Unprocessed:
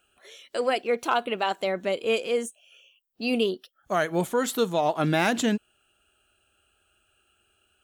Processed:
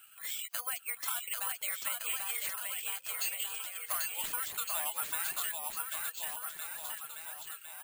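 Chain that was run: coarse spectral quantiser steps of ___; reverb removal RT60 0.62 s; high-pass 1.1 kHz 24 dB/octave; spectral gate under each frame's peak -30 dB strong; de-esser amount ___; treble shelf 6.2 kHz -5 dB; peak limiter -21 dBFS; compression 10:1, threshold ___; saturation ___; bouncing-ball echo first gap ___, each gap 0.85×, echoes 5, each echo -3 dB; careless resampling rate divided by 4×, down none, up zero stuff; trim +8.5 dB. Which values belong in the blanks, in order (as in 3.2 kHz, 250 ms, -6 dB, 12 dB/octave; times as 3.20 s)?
15 dB, 65%, -48 dBFS, -36.5 dBFS, 790 ms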